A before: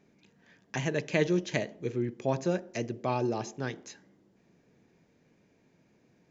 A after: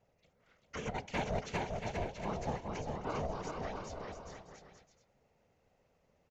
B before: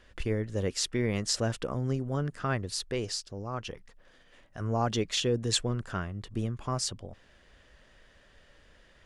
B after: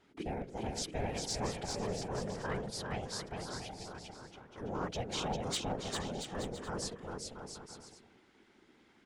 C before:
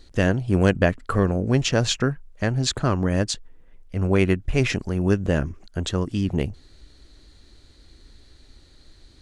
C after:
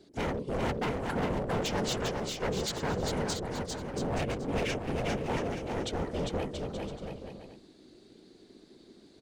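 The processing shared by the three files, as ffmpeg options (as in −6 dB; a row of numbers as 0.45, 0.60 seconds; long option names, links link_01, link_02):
-filter_complex "[0:a]aeval=exprs='val(0)*sin(2*PI*310*n/s)':channel_layout=same,afftfilt=real='hypot(re,im)*cos(2*PI*random(0))':imag='hypot(re,im)*sin(2*PI*random(1))':win_size=512:overlap=0.75,volume=28.5dB,asoftclip=hard,volume=-28.5dB,asplit=2[link_01][link_02];[link_02]aecho=0:1:400|680|876|1013|1109:0.631|0.398|0.251|0.158|0.1[link_03];[link_01][link_03]amix=inputs=2:normalize=0"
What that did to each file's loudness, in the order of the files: −8.0, −7.5, −10.0 LU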